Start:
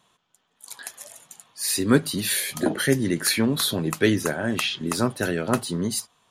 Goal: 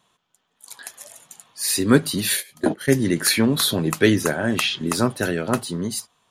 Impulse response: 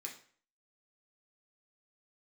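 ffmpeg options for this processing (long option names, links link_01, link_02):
-filter_complex "[0:a]asplit=3[link_01][link_02][link_03];[link_01]afade=type=out:start_time=2.35:duration=0.02[link_04];[link_02]agate=range=-20dB:threshold=-23dB:ratio=16:detection=peak,afade=type=in:start_time=2.35:duration=0.02,afade=type=out:start_time=2.95:duration=0.02[link_05];[link_03]afade=type=in:start_time=2.95:duration=0.02[link_06];[link_04][link_05][link_06]amix=inputs=3:normalize=0,dynaudnorm=framelen=220:gausssize=11:maxgain=11.5dB,volume=-1dB"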